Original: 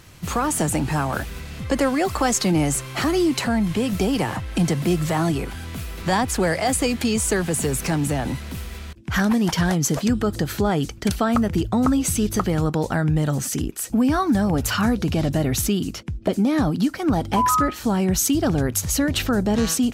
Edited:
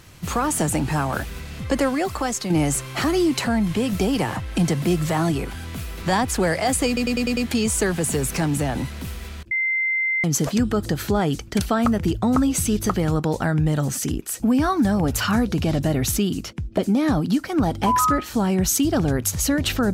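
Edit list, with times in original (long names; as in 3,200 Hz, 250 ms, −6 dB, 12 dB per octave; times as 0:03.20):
0:01.75–0:02.50: fade out, to −7.5 dB
0:06.87: stutter 0.10 s, 6 plays
0:09.01–0:09.74: beep over 2,080 Hz −19 dBFS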